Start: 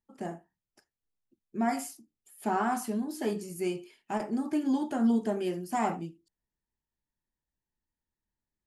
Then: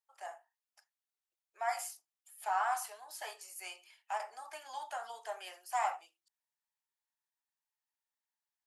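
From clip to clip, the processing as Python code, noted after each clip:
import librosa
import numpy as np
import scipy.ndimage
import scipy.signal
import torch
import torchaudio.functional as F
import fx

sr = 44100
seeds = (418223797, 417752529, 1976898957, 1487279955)

y = scipy.signal.sosfilt(scipy.signal.butter(6, 690.0, 'highpass', fs=sr, output='sos'), x)
y = F.gain(torch.from_numpy(y), -1.5).numpy()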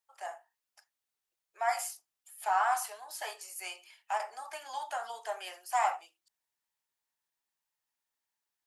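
y = fx.hum_notches(x, sr, base_hz=50, count=6)
y = F.gain(torch.from_numpy(y), 4.5).numpy()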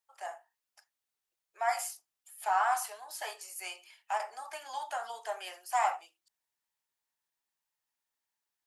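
y = x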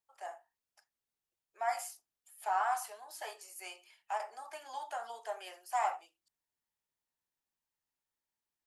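y = fx.low_shelf(x, sr, hz=450.0, db=10.5)
y = F.gain(torch.from_numpy(y), -6.0).numpy()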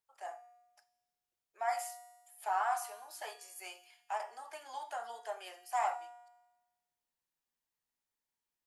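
y = fx.comb_fb(x, sr, f0_hz=240.0, decay_s=1.1, harmonics='all', damping=0.0, mix_pct=70)
y = F.gain(torch.from_numpy(y), 9.0).numpy()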